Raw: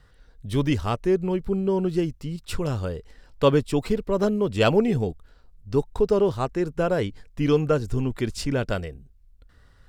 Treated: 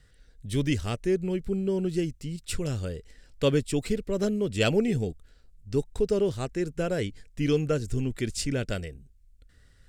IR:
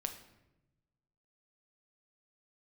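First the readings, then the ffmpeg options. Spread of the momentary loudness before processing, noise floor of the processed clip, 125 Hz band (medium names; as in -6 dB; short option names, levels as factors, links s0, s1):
10 LU, -58 dBFS, -3.0 dB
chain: -af "equalizer=f=1000:t=o:w=1:g=-12,equalizer=f=2000:t=o:w=1:g=4,equalizer=f=8000:t=o:w=1:g=8,volume=0.708"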